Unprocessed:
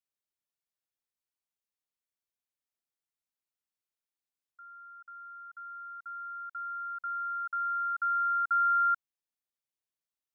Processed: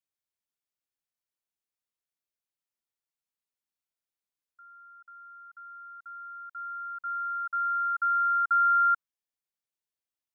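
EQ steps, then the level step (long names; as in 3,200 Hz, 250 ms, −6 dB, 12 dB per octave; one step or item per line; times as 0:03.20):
dynamic equaliser 1,300 Hz, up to +6 dB, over −39 dBFS
−2.0 dB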